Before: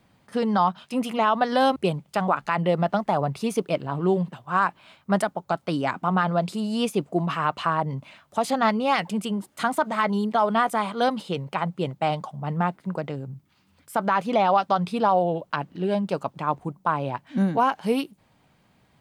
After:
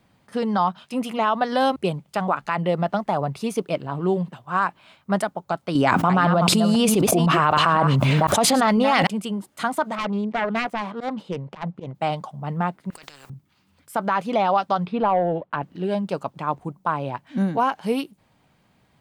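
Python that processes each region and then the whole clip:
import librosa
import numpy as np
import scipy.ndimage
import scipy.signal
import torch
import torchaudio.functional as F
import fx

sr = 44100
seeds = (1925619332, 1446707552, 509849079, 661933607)

y = fx.chain(x, sr, fx.reverse_delay(ms=252, wet_db=-9.5),
    fx.env_flatten(amount_pct=100), at=(5.75, 9.07))
y = fx.chain(y, sr, fx.self_delay(depth_ms=0.28),
    fx.lowpass(hz=1600.0, slope=6),
    fx.auto_swell(attack_ms=102.0), at=(9.95, 11.95))
y = fx.chain(y, sr, fx.over_compress(threshold_db=-35.0, ratio=-1.0),
    fx.spectral_comp(ratio=10.0), at=(12.9, 13.3))
y = fx.chain(y, sr, fx.highpass(hz=120.0, slope=6),
    fx.leveller(passes=1),
    fx.air_absorb(metres=390.0), at=(14.86, 15.63))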